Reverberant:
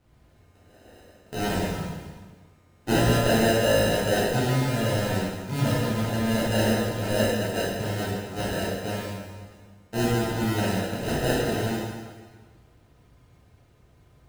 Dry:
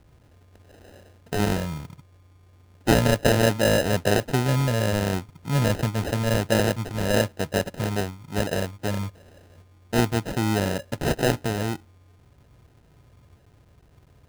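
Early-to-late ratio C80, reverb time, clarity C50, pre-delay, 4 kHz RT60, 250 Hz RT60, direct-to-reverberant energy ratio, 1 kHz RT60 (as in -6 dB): 1.0 dB, 1.5 s, -1.5 dB, 5 ms, 1.4 s, 1.5 s, -9.5 dB, 1.5 s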